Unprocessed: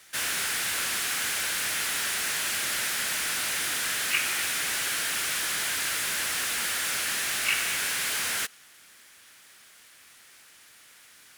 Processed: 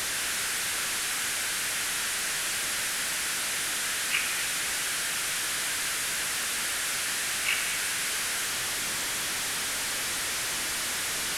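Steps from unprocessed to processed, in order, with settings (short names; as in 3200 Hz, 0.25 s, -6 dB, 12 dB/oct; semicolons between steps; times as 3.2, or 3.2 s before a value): delta modulation 64 kbps, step -22 dBFS; gain -2 dB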